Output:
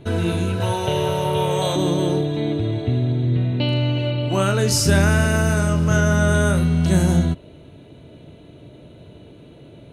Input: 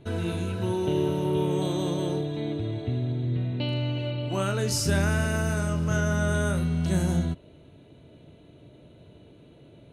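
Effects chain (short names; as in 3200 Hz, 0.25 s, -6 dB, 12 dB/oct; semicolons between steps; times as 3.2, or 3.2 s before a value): 0.6–1.76 EQ curve 120 Hz 0 dB, 310 Hz -17 dB, 490 Hz +4 dB; gain +8 dB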